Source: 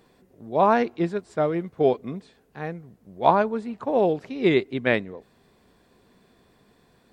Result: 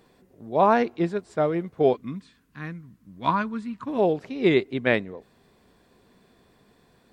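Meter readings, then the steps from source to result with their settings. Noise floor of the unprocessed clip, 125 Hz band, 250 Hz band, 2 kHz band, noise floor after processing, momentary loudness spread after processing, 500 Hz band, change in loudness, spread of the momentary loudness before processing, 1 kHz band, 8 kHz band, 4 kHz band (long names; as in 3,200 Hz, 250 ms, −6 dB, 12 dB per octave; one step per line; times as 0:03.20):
−62 dBFS, 0.0 dB, 0.0 dB, 0.0 dB, −62 dBFS, 17 LU, −1.0 dB, −0.5 dB, 15 LU, −1.5 dB, can't be measured, 0.0 dB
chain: gain on a spectral selection 0:01.96–0:03.99, 330–940 Hz −14 dB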